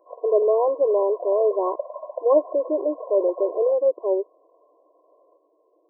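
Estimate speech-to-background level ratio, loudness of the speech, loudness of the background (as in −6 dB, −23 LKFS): 14.5 dB, −22.0 LKFS, −36.5 LKFS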